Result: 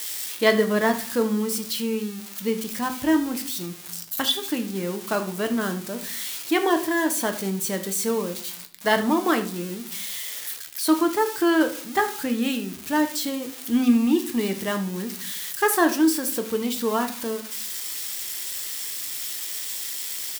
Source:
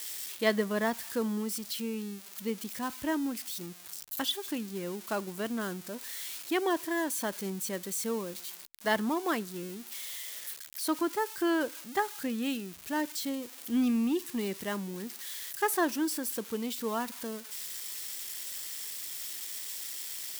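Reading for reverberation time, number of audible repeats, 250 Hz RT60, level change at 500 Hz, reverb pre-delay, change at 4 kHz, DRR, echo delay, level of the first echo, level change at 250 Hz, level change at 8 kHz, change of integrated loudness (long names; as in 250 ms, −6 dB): 0.45 s, 1, 0.85 s, +9.0 dB, 7 ms, +8.5 dB, 5.5 dB, 77 ms, −16.5 dB, +9.0 dB, +8.0 dB, +8.5 dB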